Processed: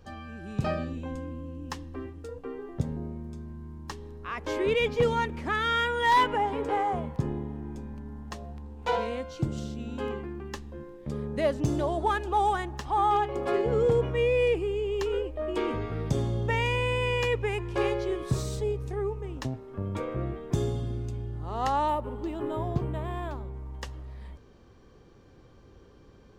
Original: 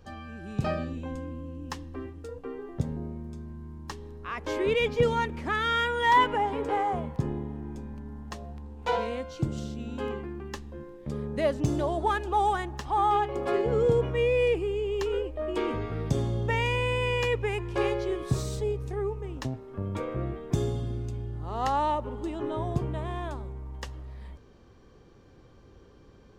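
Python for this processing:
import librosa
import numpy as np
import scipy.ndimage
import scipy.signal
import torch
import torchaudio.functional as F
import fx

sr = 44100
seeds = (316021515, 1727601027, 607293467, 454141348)

y = np.clip(10.0 ** (16.5 / 20.0) * x, -1.0, 1.0) / 10.0 ** (16.5 / 20.0)
y = fx.resample_linear(y, sr, factor=4, at=(21.88, 23.54))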